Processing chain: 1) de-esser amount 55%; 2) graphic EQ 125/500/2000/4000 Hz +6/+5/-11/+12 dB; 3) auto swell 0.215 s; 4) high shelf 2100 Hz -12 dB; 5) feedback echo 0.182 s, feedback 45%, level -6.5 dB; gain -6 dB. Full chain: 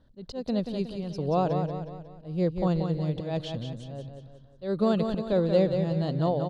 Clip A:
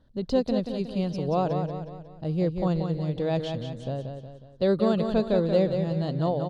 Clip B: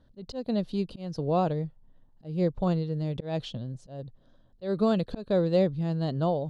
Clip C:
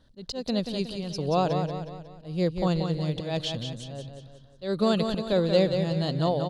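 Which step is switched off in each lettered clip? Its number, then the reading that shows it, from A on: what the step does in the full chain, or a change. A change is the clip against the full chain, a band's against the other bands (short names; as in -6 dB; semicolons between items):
3, momentary loudness spread change -5 LU; 5, echo-to-direct -5.5 dB to none; 4, 4 kHz band +8.5 dB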